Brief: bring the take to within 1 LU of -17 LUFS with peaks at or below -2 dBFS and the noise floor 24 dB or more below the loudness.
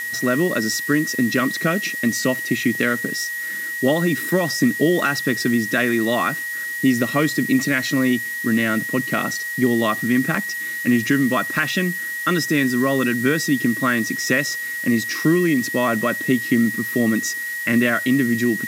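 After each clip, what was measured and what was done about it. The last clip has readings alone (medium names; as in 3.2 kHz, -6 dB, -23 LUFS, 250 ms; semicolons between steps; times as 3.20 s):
steady tone 1.9 kHz; tone level -25 dBFS; noise floor -28 dBFS; noise floor target -44 dBFS; loudness -20.0 LUFS; peak level -5.5 dBFS; loudness target -17.0 LUFS
-> band-stop 1.9 kHz, Q 30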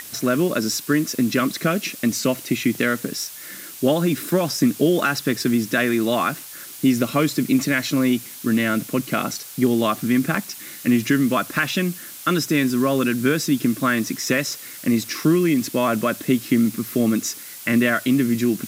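steady tone not found; noise floor -38 dBFS; noise floor target -45 dBFS
-> noise reduction 7 dB, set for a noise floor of -38 dBFS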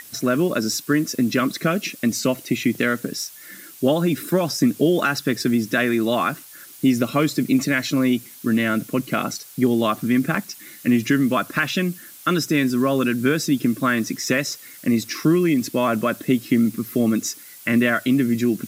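noise floor -43 dBFS; noise floor target -45 dBFS
-> noise reduction 6 dB, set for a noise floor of -43 dBFS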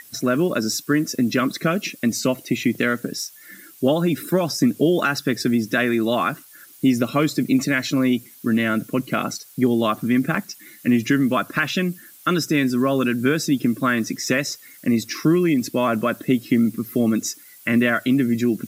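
noise floor -47 dBFS; loudness -21.0 LUFS; peak level -6.5 dBFS; loudness target -17.0 LUFS
-> trim +4 dB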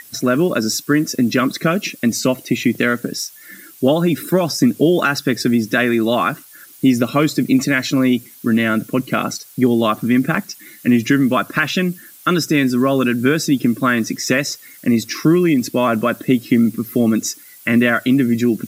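loudness -17.0 LUFS; peak level -2.5 dBFS; noise floor -43 dBFS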